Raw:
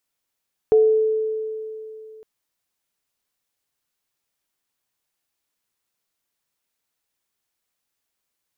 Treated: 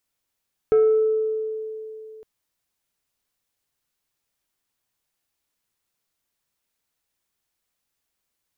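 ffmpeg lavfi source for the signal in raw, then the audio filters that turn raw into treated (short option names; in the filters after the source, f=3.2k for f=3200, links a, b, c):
-f lavfi -i "aevalsrc='0.316*pow(10,-3*t/2.92)*sin(2*PI*437*t)+0.0335*pow(10,-3*t/0.52)*sin(2*PI*727*t)':d=1.51:s=44100"
-af "lowshelf=f=130:g=6,asoftclip=type=tanh:threshold=-12dB"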